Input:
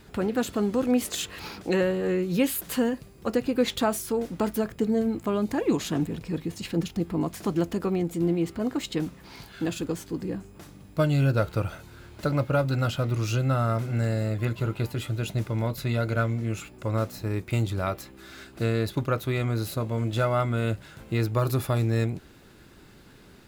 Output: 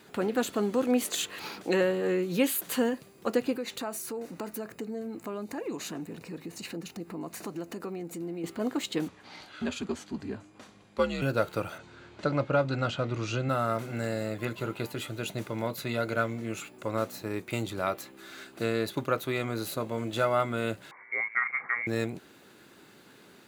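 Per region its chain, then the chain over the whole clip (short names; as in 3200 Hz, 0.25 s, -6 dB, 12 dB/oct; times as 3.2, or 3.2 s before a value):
3.57–8.44 notch 3300 Hz, Q 5.5 + compressor 2.5:1, threshold -34 dBFS
9.08–11.22 LPF 6400 Hz + frequency shift -90 Hz
11.78–13.49 Bessel low-pass 5100 Hz, order 8 + low shelf 75 Hz +11 dB
20.91–21.87 HPF 270 Hz 24 dB/oct + air absorption 180 m + inverted band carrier 2500 Hz
whole clip: Bessel high-pass 260 Hz, order 2; notch 5200 Hz, Q 13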